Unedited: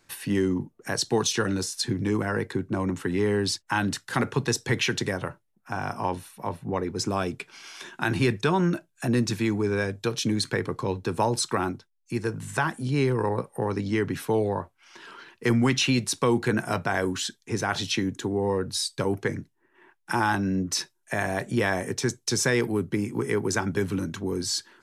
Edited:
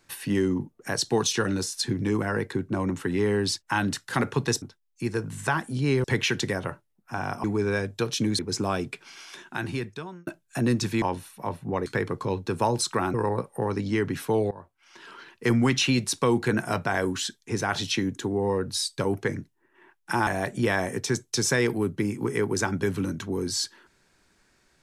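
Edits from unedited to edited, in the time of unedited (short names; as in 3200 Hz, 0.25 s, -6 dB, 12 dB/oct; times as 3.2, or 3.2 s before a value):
6.02–6.86 swap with 9.49–10.44
7.52–8.74 fade out
11.72–13.14 move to 4.62
14.51–15.33 fade in equal-power, from -21 dB
20.27–21.21 cut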